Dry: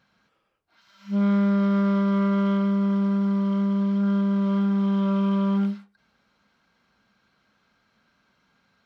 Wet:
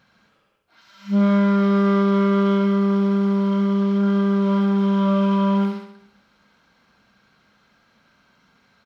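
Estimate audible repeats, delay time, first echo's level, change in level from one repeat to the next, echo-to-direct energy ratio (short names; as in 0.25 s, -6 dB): 6, 68 ms, -7.0 dB, -5.0 dB, -5.5 dB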